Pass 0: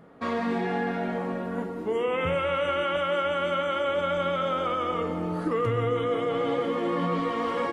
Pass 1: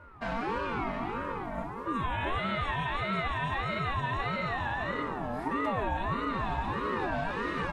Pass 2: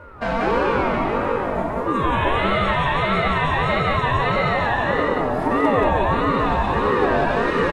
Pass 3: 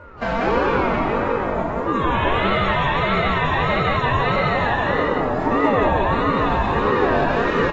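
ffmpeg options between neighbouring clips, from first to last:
ffmpeg -i in.wav -af "aeval=exprs='val(0)+0.00562*sin(2*PI*670*n/s)':channel_layout=same,aeval=exprs='val(0)*sin(2*PI*590*n/s+590*0.3/1.6*sin(2*PI*1.6*n/s))':channel_layout=same,volume=-2dB" out.wav
ffmpeg -i in.wav -filter_complex "[0:a]equalizer=frequency=490:width=2.2:gain=7.5,asplit=2[link_01][link_02];[link_02]aecho=0:1:84.55|180.8:0.316|0.708[link_03];[link_01][link_03]amix=inputs=2:normalize=0,volume=9dB" out.wav
ffmpeg -i in.wav -ar 24000 -c:a aac -b:a 24k out.aac

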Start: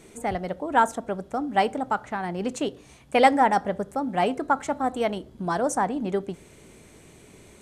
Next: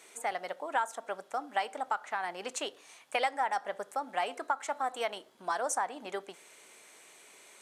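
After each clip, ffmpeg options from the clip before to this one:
ffmpeg -i in.wav -af "highpass=810,acompressor=threshold=-28dB:ratio=4" out.wav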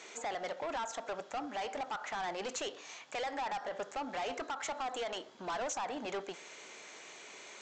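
ffmpeg -i in.wav -af "alimiter=level_in=3.5dB:limit=-24dB:level=0:latency=1:release=63,volume=-3.5dB,aresample=16000,asoftclip=type=tanh:threshold=-40dB,aresample=44100,volume=6.5dB" out.wav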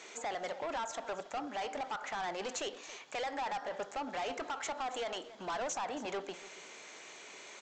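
ffmpeg -i in.wav -af "aecho=1:1:276:0.15" out.wav

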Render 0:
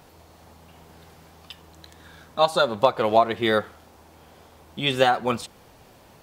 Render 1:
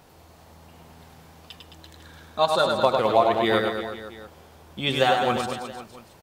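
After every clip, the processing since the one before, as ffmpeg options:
ffmpeg -i in.wav -af "aecho=1:1:100|215|347.2|499.3|674.2:0.631|0.398|0.251|0.158|0.1,volume=-2dB" out.wav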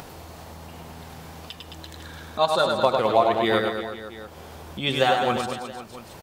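ffmpeg -i in.wav -af "acompressor=mode=upward:threshold=-31dB:ratio=2.5" out.wav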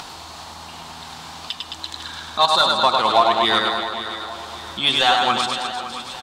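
ffmpeg -i in.wav -filter_complex "[0:a]equalizer=frequency=125:width_type=o:width=1:gain=-4,equalizer=frequency=500:width_type=o:width=1:gain=-11,equalizer=frequency=1000:width_type=o:width=1:gain=4,equalizer=frequency=2000:width_type=o:width=1:gain=-4,equalizer=frequency=4000:width_type=o:width=1:gain=10,equalizer=frequency=8000:width_type=o:width=1:gain=9,asplit=2[link_01][link_02];[link_02]highpass=frequency=720:poles=1,volume=12dB,asoftclip=type=tanh:threshold=-4dB[link_03];[link_01][link_03]amix=inputs=2:normalize=0,lowpass=frequency=1800:poles=1,volume=-6dB,aecho=1:1:562|1124|1686|2248:0.211|0.0972|0.0447|0.0206,volume=3dB" out.wav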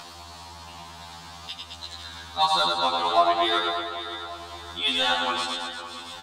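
ffmpeg -i in.wav -af "afftfilt=real='re*2*eq(mod(b,4),0)':imag='im*2*eq(mod(b,4),0)':win_size=2048:overlap=0.75,volume=-4dB" out.wav

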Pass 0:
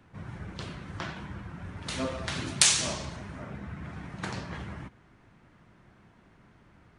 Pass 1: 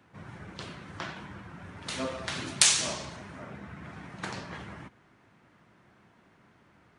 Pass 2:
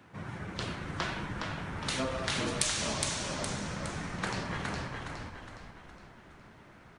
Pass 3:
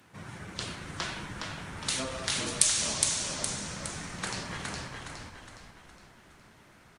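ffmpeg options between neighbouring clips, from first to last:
ffmpeg -i in.wav -af "highpass=67,lowshelf=frequency=180:gain=-7.5" out.wav
ffmpeg -i in.wav -filter_complex "[0:a]acompressor=threshold=-34dB:ratio=6,asplit=2[link_01][link_02];[link_02]asplit=6[link_03][link_04][link_05][link_06][link_07][link_08];[link_03]adelay=414,afreqshift=-44,volume=-3.5dB[link_09];[link_04]adelay=828,afreqshift=-88,volume=-10.2dB[link_10];[link_05]adelay=1242,afreqshift=-132,volume=-17dB[link_11];[link_06]adelay=1656,afreqshift=-176,volume=-23.7dB[link_12];[link_07]adelay=2070,afreqshift=-220,volume=-30.5dB[link_13];[link_08]adelay=2484,afreqshift=-264,volume=-37.2dB[link_14];[link_09][link_10][link_11][link_12][link_13][link_14]amix=inputs=6:normalize=0[link_15];[link_01][link_15]amix=inputs=2:normalize=0,volume=4.5dB" out.wav
ffmpeg -i in.wav -af "crystalizer=i=3:c=0,aresample=32000,aresample=44100,volume=-3.5dB" out.wav

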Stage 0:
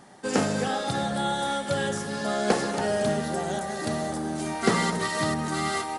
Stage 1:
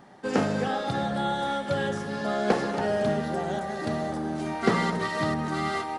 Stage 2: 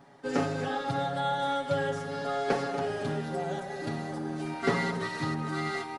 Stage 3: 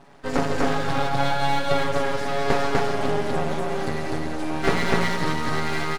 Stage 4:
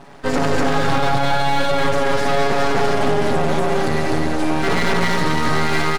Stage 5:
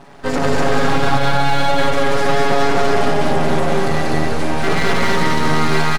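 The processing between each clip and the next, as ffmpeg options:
ffmpeg -i in.wav -af "equalizer=frequency=9500:width_type=o:width=1.5:gain=-14" out.wav
ffmpeg -i in.wav -af "aecho=1:1:7.2:0.99,volume=-6.5dB" out.wav
ffmpeg -i in.wav -filter_complex "[0:a]aeval=exprs='max(val(0),0)':channel_layout=same,asplit=2[link_01][link_02];[link_02]aecho=0:1:145.8|247.8:0.251|0.891[link_03];[link_01][link_03]amix=inputs=2:normalize=0,volume=8.5dB" out.wav
ffmpeg -i in.wav -af "alimiter=limit=-15dB:level=0:latency=1:release=20,volume=8.5dB" out.wav
ffmpeg -i in.wav -af "aecho=1:1:188:0.708" out.wav

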